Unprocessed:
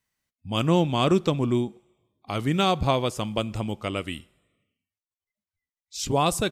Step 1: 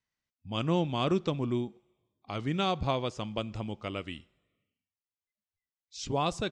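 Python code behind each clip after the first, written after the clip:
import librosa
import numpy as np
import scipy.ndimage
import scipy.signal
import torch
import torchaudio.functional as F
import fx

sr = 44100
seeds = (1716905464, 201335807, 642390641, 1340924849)

y = scipy.signal.sosfilt(scipy.signal.butter(4, 6500.0, 'lowpass', fs=sr, output='sos'), x)
y = F.gain(torch.from_numpy(y), -7.0).numpy()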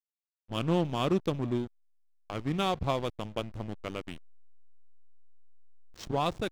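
y = fx.backlash(x, sr, play_db=-31.5)
y = F.gain(torch.from_numpy(y), 1.0).numpy()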